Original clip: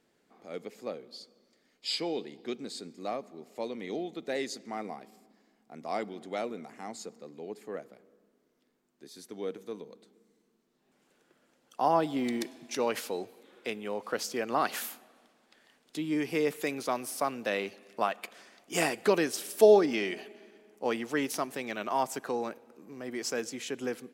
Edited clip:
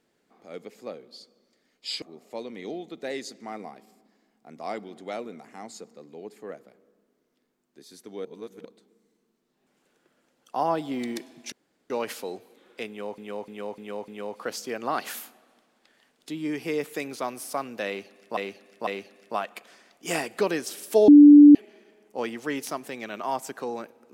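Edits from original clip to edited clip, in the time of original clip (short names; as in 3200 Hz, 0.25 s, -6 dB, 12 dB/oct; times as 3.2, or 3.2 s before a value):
2.02–3.27 cut
9.5–9.9 reverse
12.77 insert room tone 0.38 s
13.75–14.05 loop, 5 plays
17.54–18.04 loop, 3 plays
19.75–20.22 bleep 292 Hz -6.5 dBFS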